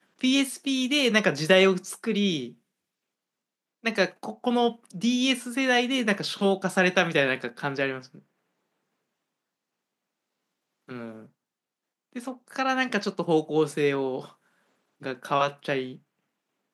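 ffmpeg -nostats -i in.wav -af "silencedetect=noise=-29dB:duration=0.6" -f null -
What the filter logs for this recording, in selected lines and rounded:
silence_start: 2.45
silence_end: 3.86 | silence_duration: 1.41
silence_start: 7.98
silence_end: 10.91 | silence_duration: 2.93
silence_start: 11.08
silence_end: 12.16 | silence_duration: 1.08
silence_start: 14.20
silence_end: 15.05 | silence_duration: 0.86
silence_start: 15.85
silence_end: 16.74 | silence_duration: 0.89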